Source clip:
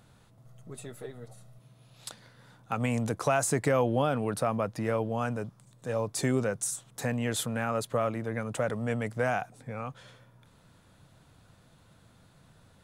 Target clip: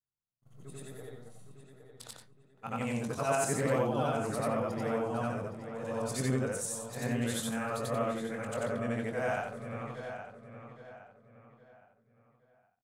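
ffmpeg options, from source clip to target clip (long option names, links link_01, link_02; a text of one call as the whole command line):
ffmpeg -i in.wav -filter_complex "[0:a]afftfilt=real='re':imag='-im':win_size=8192:overlap=0.75,agate=range=-39dB:threshold=-54dB:ratio=16:detection=peak,asplit=2[link_01][link_02];[link_02]adelay=22,volume=-8dB[link_03];[link_01][link_03]amix=inputs=2:normalize=0,asplit=2[link_04][link_05];[link_05]adelay=815,lowpass=frequency=3700:poles=1,volume=-9dB,asplit=2[link_06][link_07];[link_07]adelay=815,lowpass=frequency=3700:poles=1,volume=0.37,asplit=2[link_08][link_09];[link_09]adelay=815,lowpass=frequency=3700:poles=1,volume=0.37,asplit=2[link_10][link_11];[link_11]adelay=815,lowpass=frequency=3700:poles=1,volume=0.37[link_12];[link_06][link_08][link_10][link_12]amix=inputs=4:normalize=0[link_13];[link_04][link_13]amix=inputs=2:normalize=0" out.wav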